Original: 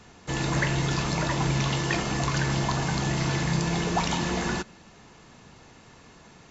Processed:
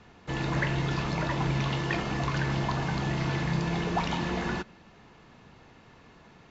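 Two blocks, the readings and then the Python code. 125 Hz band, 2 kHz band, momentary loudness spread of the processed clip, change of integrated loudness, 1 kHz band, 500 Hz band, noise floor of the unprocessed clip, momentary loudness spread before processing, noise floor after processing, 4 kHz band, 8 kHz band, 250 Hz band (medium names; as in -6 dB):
-2.5 dB, -3.0 dB, 4 LU, -3.0 dB, -2.5 dB, -2.5 dB, -52 dBFS, 4 LU, -55 dBFS, -5.5 dB, no reading, -2.5 dB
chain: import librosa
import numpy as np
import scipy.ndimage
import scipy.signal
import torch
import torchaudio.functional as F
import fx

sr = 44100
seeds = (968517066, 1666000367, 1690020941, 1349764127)

y = scipy.signal.sosfilt(scipy.signal.butter(2, 3700.0, 'lowpass', fs=sr, output='sos'), x)
y = F.gain(torch.from_numpy(y), -2.5).numpy()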